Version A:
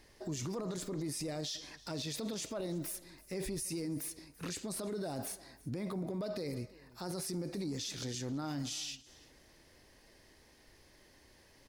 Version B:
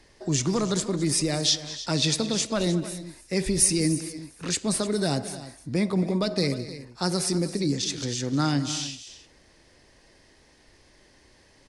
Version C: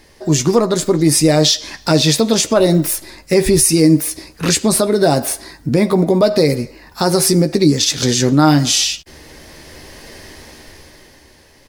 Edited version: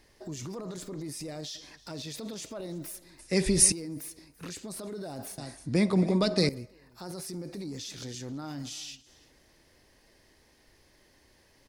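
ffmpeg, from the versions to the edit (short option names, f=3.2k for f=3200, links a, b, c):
-filter_complex "[1:a]asplit=2[a][b];[0:a]asplit=3[c][d][e];[c]atrim=end=3.192[f];[a]atrim=start=3.188:end=3.722[g];[d]atrim=start=3.718:end=5.382[h];[b]atrim=start=5.378:end=6.492[i];[e]atrim=start=6.488[j];[f][g]acrossfade=d=0.004:c1=hsin:c2=hsin[k];[k][h]acrossfade=d=0.004:c1=hsin:c2=hsin[l];[l][i]acrossfade=d=0.004:c1=hsin:c2=hsin[m];[m][j]acrossfade=d=0.004:c1=hsin:c2=hsin"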